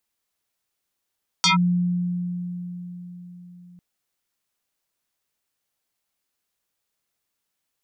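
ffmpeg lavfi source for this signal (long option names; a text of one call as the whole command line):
ffmpeg -f lavfi -i "aevalsrc='0.2*pow(10,-3*t/4.55)*sin(2*PI*177*t+5.7*clip(1-t/0.13,0,1)*sin(2*PI*6.44*177*t))':duration=2.35:sample_rate=44100" out.wav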